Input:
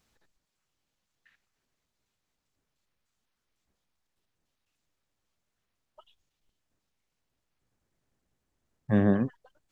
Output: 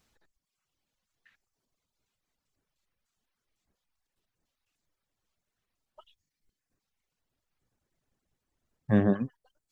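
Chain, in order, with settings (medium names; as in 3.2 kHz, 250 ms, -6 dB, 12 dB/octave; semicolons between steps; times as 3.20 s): reverb removal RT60 1.2 s; trim +1 dB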